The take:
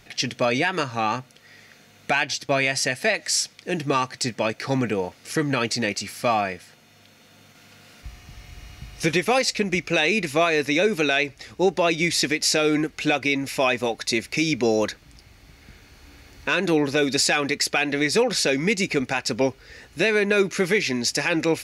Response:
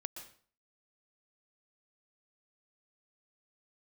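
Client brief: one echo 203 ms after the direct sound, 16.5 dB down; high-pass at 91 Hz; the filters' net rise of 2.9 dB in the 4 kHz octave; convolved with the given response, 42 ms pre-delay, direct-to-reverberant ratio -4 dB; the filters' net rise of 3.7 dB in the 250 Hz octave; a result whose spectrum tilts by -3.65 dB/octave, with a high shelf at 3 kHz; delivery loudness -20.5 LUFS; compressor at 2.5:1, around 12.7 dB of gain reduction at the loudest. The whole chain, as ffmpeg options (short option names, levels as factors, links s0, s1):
-filter_complex "[0:a]highpass=91,equalizer=f=250:t=o:g=5,highshelf=f=3000:g=-6,equalizer=f=4000:t=o:g=8.5,acompressor=threshold=0.02:ratio=2.5,aecho=1:1:203:0.15,asplit=2[s0][s1];[1:a]atrim=start_sample=2205,adelay=42[s2];[s1][s2]afir=irnorm=-1:irlink=0,volume=2[s3];[s0][s3]amix=inputs=2:normalize=0,volume=2.11"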